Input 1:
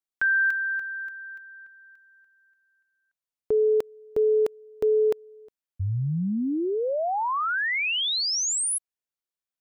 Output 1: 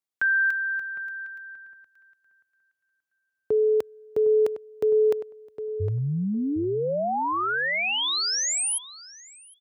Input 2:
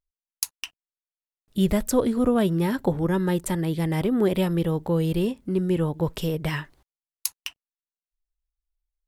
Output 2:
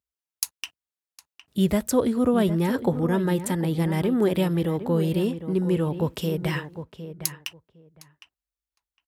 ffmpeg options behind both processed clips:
ffmpeg -i in.wav -filter_complex "[0:a]highpass=frequency=61:width=0.5412,highpass=frequency=61:width=1.3066,asplit=2[link_01][link_02];[link_02]adelay=759,lowpass=frequency=2000:poles=1,volume=-11dB,asplit=2[link_03][link_04];[link_04]adelay=759,lowpass=frequency=2000:poles=1,volume=0.16[link_05];[link_03][link_05]amix=inputs=2:normalize=0[link_06];[link_01][link_06]amix=inputs=2:normalize=0" out.wav

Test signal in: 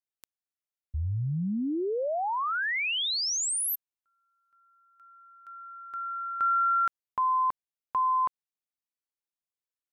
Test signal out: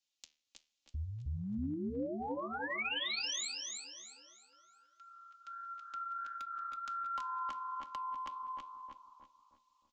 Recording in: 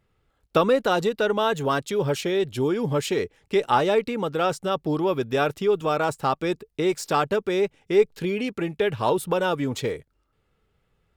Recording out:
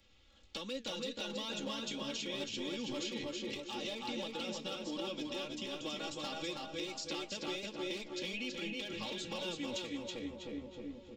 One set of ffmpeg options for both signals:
ffmpeg -i in.wav -filter_complex "[0:a]aresample=16000,aresample=44100,acrossover=split=150|330|2400|5500[link_01][link_02][link_03][link_04][link_05];[link_01]acompressor=threshold=-36dB:ratio=4[link_06];[link_02]acompressor=threshold=-35dB:ratio=4[link_07];[link_03]acompressor=threshold=-32dB:ratio=4[link_08];[link_04]acompressor=threshold=-43dB:ratio=4[link_09];[link_05]acompressor=threshold=-53dB:ratio=4[link_10];[link_06][link_07][link_08][link_09][link_10]amix=inputs=5:normalize=0,volume=23.5dB,asoftclip=hard,volume=-23.5dB,highshelf=frequency=2200:width_type=q:width=1.5:gain=11,aecho=1:1:3.6:0.82,asplit=2[link_11][link_12];[link_12]adelay=312,lowpass=frequency=1100:poles=1,volume=-3.5dB,asplit=2[link_13][link_14];[link_14]adelay=312,lowpass=frequency=1100:poles=1,volume=0.5,asplit=2[link_15][link_16];[link_16]adelay=312,lowpass=frequency=1100:poles=1,volume=0.5,asplit=2[link_17][link_18];[link_18]adelay=312,lowpass=frequency=1100:poles=1,volume=0.5,asplit=2[link_19][link_20];[link_20]adelay=312,lowpass=frequency=1100:poles=1,volume=0.5,asplit=2[link_21][link_22];[link_22]adelay=312,lowpass=frequency=1100:poles=1,volume=0.5,asplit=2[link_23][link_24];[link_24]adelay=312,lowpass=frequency=1100:poles=1,volume=0.5[link_25];[link_13][link_15][link_17][link_19][link_21][link_23][link_25]amix=inputs=7:normalize=0[link_26];[link_11][link_26]amix=inputs=2:normalize=0,flanger=delay=7.3:depth=6.1:regen=76:speed=1.4:shape=sinusoidal,acompressor=threshold=-38dB:ratio=5:attack=0.17:release=987:knee=6:detection=peak,asplit=2[link_27][link_28];[link_28]aecho=0:1:326|652|978|1304:0.631|0.196|0.0606|0.0188[link_29];[link_27][link_29]amix=inputs=2:normalize=0,volume=3dB" out.wav

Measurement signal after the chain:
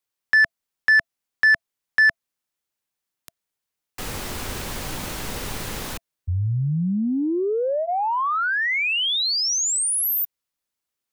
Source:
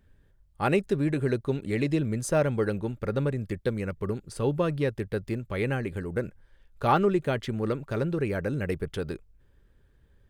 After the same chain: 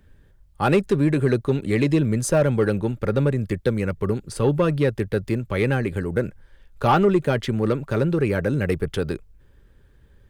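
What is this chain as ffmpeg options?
ffmpeg -i in.wav -filter_complex "[0:a]bandreject=frequency=670:width=20,acrossover=split=170[link_01][link_02];[link_02]asoftclip=type=tanh:threshold=-18dB[link_03];[link_01][link_03]amix=inputs=2:normalize=0,volume=7.5dB" out.wav

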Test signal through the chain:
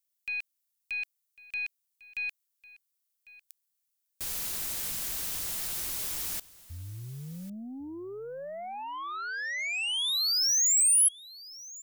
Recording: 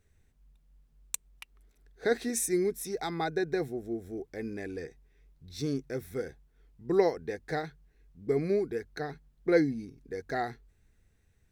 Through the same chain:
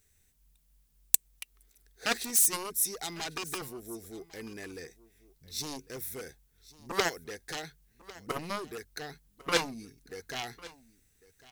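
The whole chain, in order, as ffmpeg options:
ffmpeg -i in.wav -af "aeval=exprs='0.251*(cos(1*acos(clip(val(0)/0.251,-1,1)))-cos(1*PI/2))+0.0224*(cos(2*acos(clip(val(0)/0.251,-1,1)))-cos(2*PI/2))+0.0141*(cos(4*acos(clip(val(0)/0.251,-1,1)))-cos(4*PI/2))+0.0794*(cos(7*acos(clip(val(0)/0.251,-1,1)))-cos(7*PI/2))':channel_layout=same,aecho=1:1:1100:0.1,crystalizer=i=6.5:c=0,volume=-7.5dB" out.wav

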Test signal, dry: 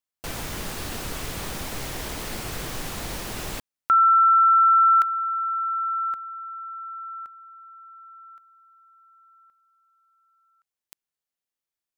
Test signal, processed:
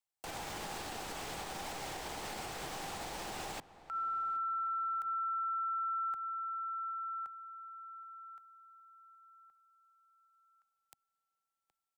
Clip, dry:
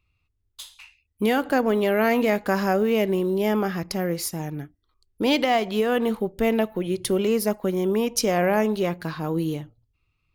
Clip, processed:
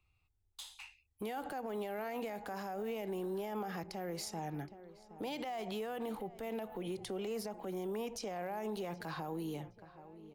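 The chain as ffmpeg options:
ffmpeg -i in.wav -filter_complex "[0:a]acrossover=split=200[link_01][link_02];[link_01]asoftclip=type=tanh:threshold=-36dB[link_03];[link_03][link_02]amix=inputs=2:normalize=0,acompressor=threshold=-20dB:ratio=6:attack=0.17:release=101:knee=1:detection=rms,equalizer=frequency=250:width_type=o:width=0.33:gain=-4,equalizer=frequency=800:width_type=o:width=0.33:gain=10,equalizer=frequency=8000:width_type=o:width=0.33:gain=4,acrossover=split=150|7100[link_04][link_05][link_06];[link_04]acompressor=threshold=-44dB:ratio=5[link_07];[link_05]acompressor=threshold=-27dB:ratio=6[link_08];[link_06]acompressor=threshold=-45dB:ratio=8[link_09];[link_07][link_08][link_09]amix=inputs=3:normalize=0,asplit=2[link_10][link_11];[link_11]adelay=770,lowpass=frequency=2100:poles=1,volume=-19.5dB,asplit=2[link_12][link_13];[link_13]adelay=770,lowpass=frequency=2100:poles=1,volume=0.46,asplit=2[link_14][link_15];[link_15]adelay=770,lowpass=frequency=2100:poles=1,volume=0.46,asplit=2[link_16][link_17];[link_17]adelay=770,lowpass=frequency=2100:poles=1,volume=0.46[link_18];[link_10][link_12][link_14][link_16][link_18]amix=inputs=5:normalize=0,alimiter=level_in=3.5dB:limit=-24dB:level=0:latency=1:release=104,volume=-3.5dB,volume=-5dB" out.wav

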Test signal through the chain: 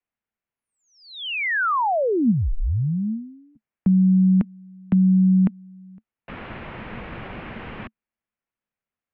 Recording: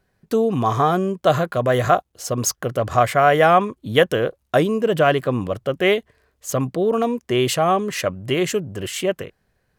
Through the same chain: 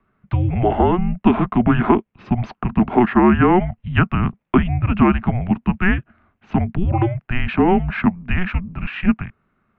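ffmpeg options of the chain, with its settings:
ffmpeg -i in.wav -filter_complex "[0:a]highpass=frequency=190:width_type=q:width=0.5412,highpass=frequency=190:width_type=q:width=1.307,lowpass=frequency=3000:width_type=q:width=0.5176,lowpass=frequency=3000:width_type=q:width=0.7071,lowpass=frequency=3000:width_type=q:width=1.932,afreqshift=-360,equalizer=frequency=220:width=4.7:gain=7.5,acrossover=split=280|1800[link_01][link_02][link_03];[link_01]acompressor=threshold=-21dB:ratio=4[link_04];[link_02]acompressor=threshold=-19dB:ratio=4[link_05];[link_03]acompressor=threshold=-34dB:ratio=4[link_06];[link_04][link_05][link_06]amix=inputs=3:normalize=0,volume=5dB" out.wav

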